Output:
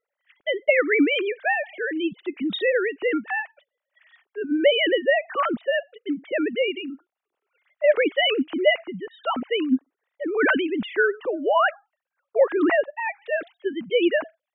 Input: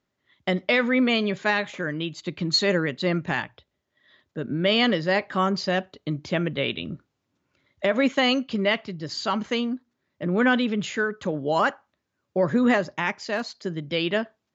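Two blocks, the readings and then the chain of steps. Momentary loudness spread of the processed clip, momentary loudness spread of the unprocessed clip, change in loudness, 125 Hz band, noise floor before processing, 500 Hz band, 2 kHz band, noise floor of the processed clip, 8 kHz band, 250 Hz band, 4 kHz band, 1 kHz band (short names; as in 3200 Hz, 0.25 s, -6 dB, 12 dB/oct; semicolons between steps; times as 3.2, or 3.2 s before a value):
11 LU, 11 LU, +1.5 dB, under -15 dB, -79 dBFS, +4.0 dB, +2.0 dB, under -85 dBFS, n/a, -1.0 dB, -1.5 dB, 0.0 dB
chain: sine-wave speech; gain +1.5 dB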